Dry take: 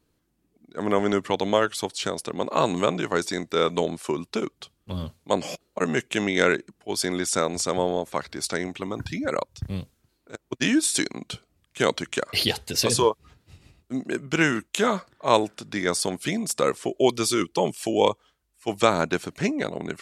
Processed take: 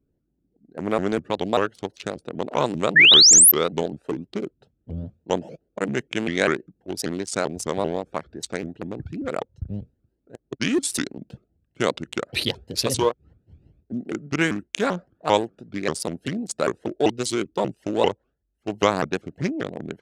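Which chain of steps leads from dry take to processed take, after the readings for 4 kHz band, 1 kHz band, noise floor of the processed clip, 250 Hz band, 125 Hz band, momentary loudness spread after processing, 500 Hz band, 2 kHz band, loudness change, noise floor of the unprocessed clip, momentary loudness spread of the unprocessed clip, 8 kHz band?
+8.5 dB, −1.5 dB, −74 dBFS, −0.5 dB, +0.5 dB, 14 LU, −1.0 dB, +4.5 dB, +5.0 dB, −72 dBFS, 12 LU, +9.5 dB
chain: adaptive Wiener filter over 41 samples
sound drawn into the spectrogram rise, 0:02.96–0:03.52, 1,900–12,000 Hz −11 dBFS
pitch modulation by a square or saw wave saw up 5.1 Hz, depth 250 cents

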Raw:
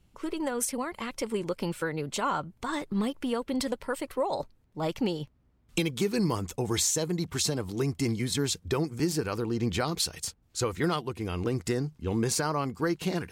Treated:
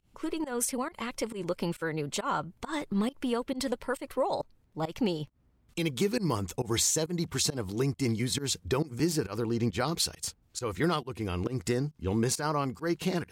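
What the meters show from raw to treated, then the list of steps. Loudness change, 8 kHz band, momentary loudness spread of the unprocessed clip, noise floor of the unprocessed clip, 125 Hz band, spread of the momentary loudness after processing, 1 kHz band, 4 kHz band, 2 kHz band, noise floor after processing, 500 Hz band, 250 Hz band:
−1.0 dB, −0.5 dB, 7 LU, −66 dBFS, −0.5 dB, 7 LU, −1.0 dB, −0.5 dB, −1.5 dB, −67 dBFS, −1.0 dB, −1.0 dB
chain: fake sidechain pumping 136 BPM, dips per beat 1, −22 dB, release 137 ms

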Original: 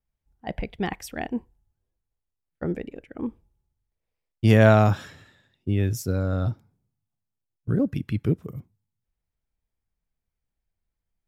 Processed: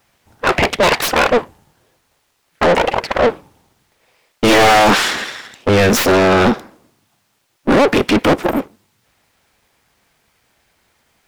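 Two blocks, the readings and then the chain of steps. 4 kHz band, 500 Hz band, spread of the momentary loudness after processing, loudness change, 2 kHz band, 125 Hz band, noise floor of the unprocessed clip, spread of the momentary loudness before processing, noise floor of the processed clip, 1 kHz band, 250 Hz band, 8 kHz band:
+22.5 dB, +13.0 dB, 10 LU, +10.5 dB, +17.0 dB, −1.0 dB, −84 dBFS, 21 LU, −64 dBFS, +17.0 dB, +9.0 dB, +19.0 dB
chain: full-wave rectification
mid-hump overdrive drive 42 dB, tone 4,300 Hz, clips at −3 dBFS

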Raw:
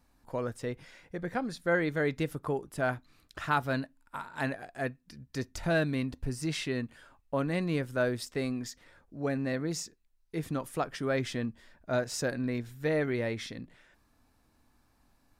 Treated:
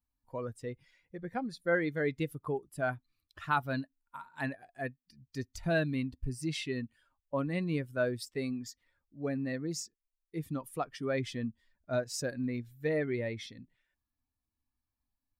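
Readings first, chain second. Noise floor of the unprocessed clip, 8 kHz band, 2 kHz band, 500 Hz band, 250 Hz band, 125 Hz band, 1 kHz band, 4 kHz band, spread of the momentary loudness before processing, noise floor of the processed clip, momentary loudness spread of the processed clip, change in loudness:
−69 dBFS, −2.5 dB, −3.0 dB, −2.5 dB, −2.5 dB, −2.5 dB, −2.5 dB, −3.0 dB, 13 LU, below −85 dBFS, 14 LU, −2.5 dB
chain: spectral dynamics exaggerated over time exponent 1.5

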